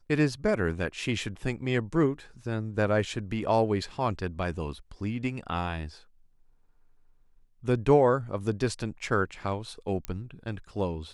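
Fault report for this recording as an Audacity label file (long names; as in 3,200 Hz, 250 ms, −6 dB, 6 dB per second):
10.050000	10.050000	click −17 dBFS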